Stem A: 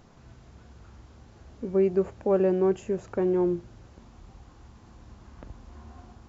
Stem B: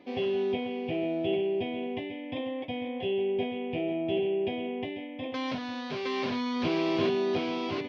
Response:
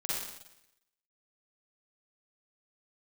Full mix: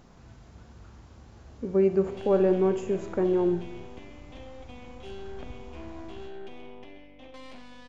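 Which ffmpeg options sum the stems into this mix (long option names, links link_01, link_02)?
-filter_complex "[0:a]volume=-1dB,asplit=2[link_01][link_02];[link_02]volume=-13dB[link_03];[1:a]highpass=frequency=180:width=0.5412,highpass=frequency=180:width=1.3066,alimiter=limit=-23dB:level=0:latency=1:release=86,aeval=exprs='0.0708*(cos(1*acos(clip(val(0)/0.0708,-1,1)))-cos(1*PI/2))+0.0158*(cos(4*acos(clip(val(0)/0.0708,-1,1)))-cos(4*PI/2))':channel_layout=same,adelay=2000,volume=-15dB,asplit=2[link_04][link_05];[link_05]volume=-11dB[link_06];[2:a]atrim=start_sample=2205[link_07];[link_03][link_06]amix=inputs=2:normalize=0[link_08];[link_08][link_07]afir=irnorm=-1:irlink=0[link_09];[link_01][link_04][link_09]amix=inputs=3:normalize=0,aeval=exprs='val(0)+0.00112*(sin(2*PI*50*n/s)+sin(2*PI*2*50*n/s)/2+sin(2*PI*3*50*n/s)/3+sin(2*PI*4*50*n/s)/4+sin(2*PI*5*50*n/s)/5)':channel_layout=same"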